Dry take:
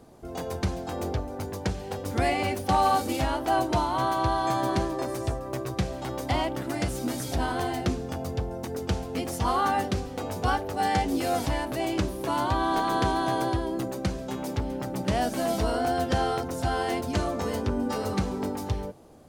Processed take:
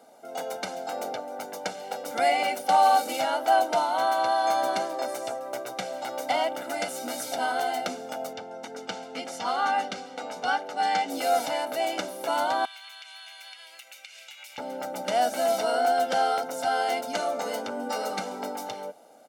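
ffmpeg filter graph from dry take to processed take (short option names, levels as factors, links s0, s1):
-filter_complex "[0:a]asettb=1/sr,asplit=3[s0][s1][s2];[s0]atrim=end=8.334[s3];[s1]atrim=start=8.33:end=11.1,asetpts=PTS-STARTPTS,afade=t=in:d=0.004:c=qsin,afade=t=out:st=2.766:d=0.004:c=qsin,lowpass=6400,equalizer=f=610:t=o:w=1:g=-5[s4];[s2]atrim=start=11.096[s5];[s3][s4]acrossfade=d=0.004:c1=hsin:c2=qsin[s6];[s6][s5]acrossfade=d=0.004:c1=qsin:c2=hsin,asettb=1/sr,asplit=3[s7][s8][s9];[s7]atrim=end=12.654[s10];[s8]atrim=start=12.65:end=14.58,asetpts=PTS-STARTPTS,afade=t=in:d=0.004:c=qsin,afade=t=out:st=1.926:d=0.004:c=qsin,highpass=f=2500:t=q:w=4.4,acompressor=threshold=0.00794:ratio=20:attack=3.2:release=140:knee=1:detection=peak[s11];[s9]atrim=start=14.576[s12];[s10][s11]acrossfade=d=0.004:c1=hsin:c2=qsin[s13];[s13][s12]acrossfade=d=0.004:c1=qsin:c2=hsin,highpass=f=290:w=0.5412,highpass=f=290:w=1.3066,aecho=1:1:1.4:0.75"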